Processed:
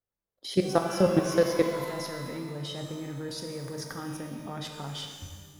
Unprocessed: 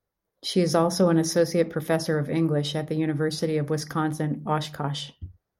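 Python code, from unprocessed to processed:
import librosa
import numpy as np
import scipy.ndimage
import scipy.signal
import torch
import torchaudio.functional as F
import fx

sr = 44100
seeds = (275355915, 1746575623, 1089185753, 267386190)

y = fx.level_steps(x, sr, step_db=19)
y = fx.rev_shimmer(y, sr, seeds[0], rt60_s=1.6, semitones=12, shimmer_db=-8, drr_db=3.5)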